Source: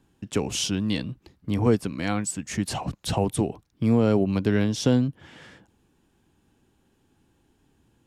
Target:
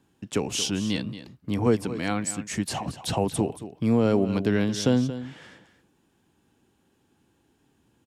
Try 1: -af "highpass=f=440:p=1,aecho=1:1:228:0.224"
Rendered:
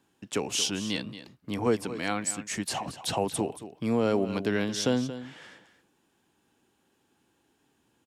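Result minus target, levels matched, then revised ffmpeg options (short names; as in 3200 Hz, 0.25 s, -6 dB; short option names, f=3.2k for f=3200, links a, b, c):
125 Hz band -5.0 dB
-af "highpass=f=120:p=1,aecho=1:1:228:0.224"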